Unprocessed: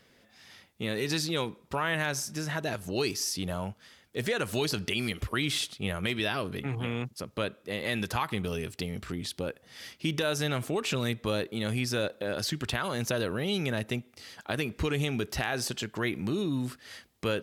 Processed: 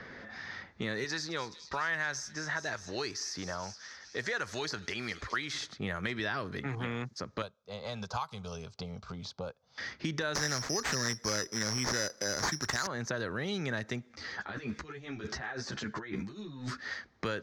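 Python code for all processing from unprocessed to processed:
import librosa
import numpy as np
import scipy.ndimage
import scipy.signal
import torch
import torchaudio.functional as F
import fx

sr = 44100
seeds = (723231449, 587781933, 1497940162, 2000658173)

y = fx.chain(x, sr, fx.peak_eq(hz=140.0, db=-10.0, octaves=2.9),
    fx.echo_wet_highpass(ms=210, feedback_pct=67, hz=4200.0, wet_db=-12), at=(1.04, 5.54))
y = fx.chain(y, sr, fx.fixed_phaser(hz=760.0, stages=4),
    fx.upward_expand(threshold_db=-55.0, expansion=1.5), at=(7.42, 9.78))
y = fx.chain(y, sr, fx.high_shelf(hz=7100.0, db=11.5),
    fx.resample_bad(factor=8, down='none', up='zero_stuff'), at=(10.35, 12.87))
y = fx.chain(y, sr, fx.over_compress(threshold_db=-36.0, ratio=-0.5),
    fx.bass_treble(bass_db=2, treble_db=-3),
    fx.ensemble(), at=(14.09, 16.94))
y = fx.env_lowpass(y, sr, base_hz=2800.0, full_db=-30.5)
y = fx.curve_eq(y, sr, hz=(620.0, 1800.0, 2800.0, 4300.0, 6300.0, 9000.0, 14000.0), db=(0, 7, -9, 0, 2, -17, -23))
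y = fx.band_squash(y, sr, depth_pct=70)
y = y * librosa.db_to_amplitude(-5.5)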